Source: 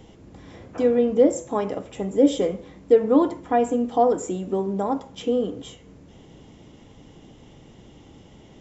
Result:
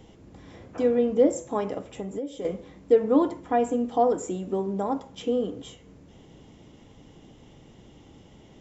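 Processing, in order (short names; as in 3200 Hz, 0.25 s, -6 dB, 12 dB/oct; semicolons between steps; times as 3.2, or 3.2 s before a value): 1.86–2.45 compressor 10:1, threshold -27 dBFS, peak gain reduction 16 dB; gain -3 dB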